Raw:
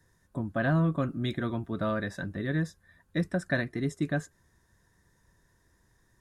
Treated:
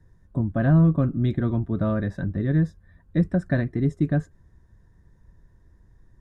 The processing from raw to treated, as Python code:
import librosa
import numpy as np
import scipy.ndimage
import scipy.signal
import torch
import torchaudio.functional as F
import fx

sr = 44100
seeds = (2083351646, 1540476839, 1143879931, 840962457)

y = fx.tilt_eq(x, sr, slope=-3.5)